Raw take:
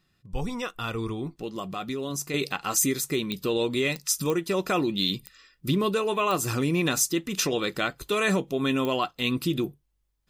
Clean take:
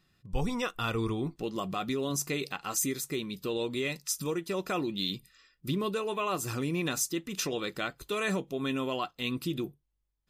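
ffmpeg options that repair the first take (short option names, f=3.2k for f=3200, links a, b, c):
-af "adeclick=t=4,asetnsamples=n=441:p=0,asendcmd='2.34 volume volume -6.5dB',volume=0dB"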